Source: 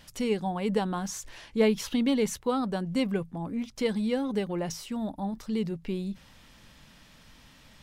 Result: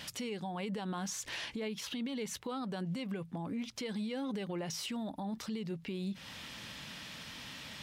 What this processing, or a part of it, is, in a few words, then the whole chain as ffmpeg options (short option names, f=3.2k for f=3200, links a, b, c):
broadcast voice chain: -af "highpass=96,deesser=0.7,acompressor=threshold=-41dB:ratio=3,equalizer=f=3.1k:t=o:w=1.9:g=6,alimiter=level_in=13dB:limit=-24dB:level=0:latency=1:release=82,volume=-13dB,volume=6dB"